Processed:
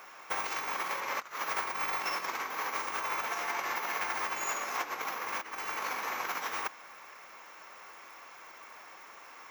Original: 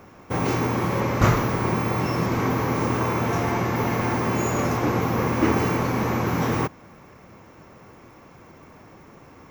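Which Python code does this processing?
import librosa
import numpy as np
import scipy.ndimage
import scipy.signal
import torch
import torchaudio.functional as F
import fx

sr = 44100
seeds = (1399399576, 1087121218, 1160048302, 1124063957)

y = fx.over_compress(x, sr, threshold_db=-26.0, ratio=-0.5)
y = scipy.signal.sosfilt(scipy.signal.butter(2, 1100.0, 'highpass', fs=sr, output='sos'), y)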